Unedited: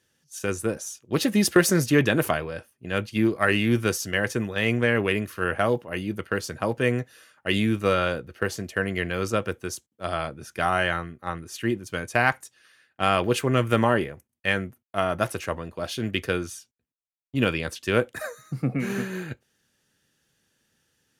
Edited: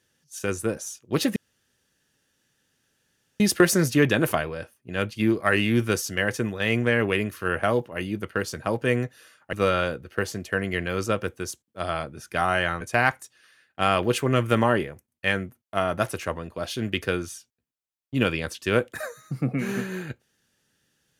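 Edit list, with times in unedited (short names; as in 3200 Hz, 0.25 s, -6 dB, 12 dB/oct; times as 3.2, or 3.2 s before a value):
1.36 insert room tone 2.04 s
7.49–7.77 cut
11.05–12.02 cut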